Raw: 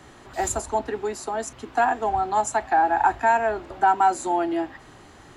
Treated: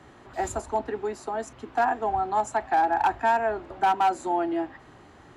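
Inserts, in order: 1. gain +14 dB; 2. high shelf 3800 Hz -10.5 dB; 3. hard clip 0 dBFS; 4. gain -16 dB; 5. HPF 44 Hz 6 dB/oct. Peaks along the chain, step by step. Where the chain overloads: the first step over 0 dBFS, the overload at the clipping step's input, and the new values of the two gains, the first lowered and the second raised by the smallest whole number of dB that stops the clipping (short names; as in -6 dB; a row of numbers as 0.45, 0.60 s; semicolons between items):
+6.0, +5.5, 0.0, -16.0, -15.5 dBFS; step 1, 5.5 dB; step 1 +8 dB, step 4 -10 dB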